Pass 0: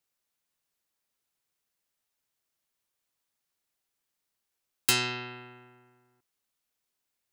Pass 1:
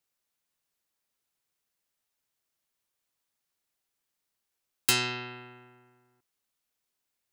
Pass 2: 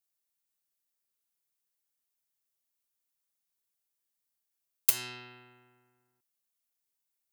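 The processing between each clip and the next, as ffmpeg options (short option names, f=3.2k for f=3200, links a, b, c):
-af anull
-af "aeval=exprs='0.335*(cos(1*acos(clip(val(0)/0.335,-1,1)))-cos(1*PI/2))+0.119*(cos(3*acos(clip(val(0)/0.335,-1,1)))-cos(3*PI/2))+0.0168*(cos(7*acos(clip(val(0)/0.335,-1,1)))-cos(7*PI/2))':c=same,crystalizer=i=1.5:c=0,volume=-2.5dB"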